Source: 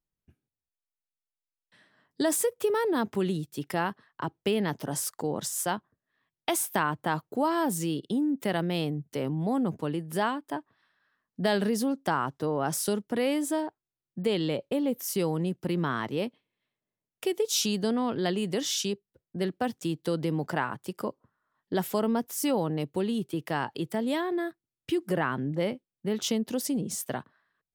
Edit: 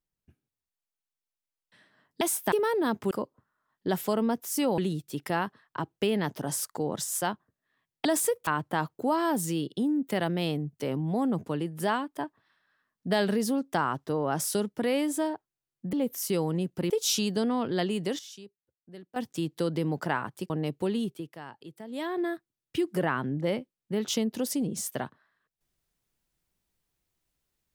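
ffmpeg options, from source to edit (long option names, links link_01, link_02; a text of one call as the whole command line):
ffmpeg -i in.wav -filter_complex "[0:a]asplit=14[link_01][link_02][link_03][link_04][link_05][link_06][link_07][link_08][link_09][link_10][link_11][link_12][link_13][link_14];[link_01]atrim=end=2.212[link_15];[link_02]atrim=start=6.488:end=6.802[link_16];[link_03]atrim=start=2.628:end=3.222[link_17];[link_04]atrim=start=20.968:end=22.642[link_18];[link_05]atrim=start=3.218:end=6.492[link_19];[link_06]atrim=start=2.208:end=2.632[link_20];[link_07]atrim=start=6.798:end=14.262[link_21];[link_08]atrim=start=14.788:end=15.762[link_22];[link_09]atrim=start=17.368:end=18.66,asetpts=PTS-STARTPTS,afade=type=out:start_time=0.852:duration=0.44:curve=log:silence=0.149624[link_23];[link_10]atrim=start=18.66:end=19.63,asetpts=PTS-STARTPTS,volume=-16.5dB[link_24];[link_11]atrim=start=19.63:end=20.972,asetpts=PTS-STARTPTS,afade=type=in:duration=0.44:curve=log:silence=0.149624[link_25];[link_12]atrim=start=22.638:end=23.46,asetpts=PTS-STARTPTS,afade=type=out:start_time=0.502:duration=0.32:silence=0.211349[link_26];[link_13]atrim=start=23.46:end=24.01,asetpts=PTS-STARTPTS,volume=-13.5dB[link_27];[link_14]atrim=start=24.01,asetpts=PTS-STARTPTS,afade=type=in:duration=0.32:silence=0.211349[link_28];[link_15][link_16]acrossfade=duration=0.004:curve1=hsin:curve2=hsin[link_29];[link_29][link_17]acrossfade=duration=0.004:curve1=hsin:curve2=hsin[link_30];[link_30][link_18]acrossfade=duration=0.004:curve1=hsin:curve2=hsin[link_31];[link_31][link_19]acrossfade=duration=0.004:curve1=hsin:curve2=hsin[link_32];[link_32][link_20]acrossfade=duration=0.004:curve1=hsin:curve2=hsin[link_33];[link_33][link_21]acrossfade=duration=0.004:curve1=hsin:curve2=hsin[link_34];[link_34][link_22]acrossfade=duration=0.004:curve1=hsin:curve2=hsin[link_35];[link_23][link_24][link_25]concat=n=3:v=0:a=1[link_36];[link_35][link_36]acrossfade=duration=0.004:curve1=hsin:curve2=hsin[link_37];[link_26][link_27][link_28]concat=n=3:v=0:a=1[link_38];[link_37][link_38]acrossfade=duration=0.004:curve1=hsin:curve2=hsin" out.wav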